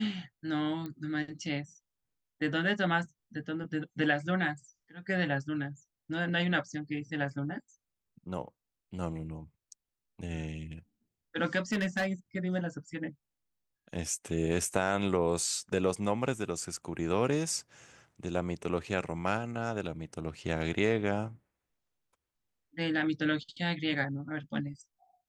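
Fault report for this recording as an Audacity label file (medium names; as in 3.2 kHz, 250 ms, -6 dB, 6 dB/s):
0.860000	0.860000	pop -27 dBFS
11.720000	12.060000	clipped -25.5 dBFS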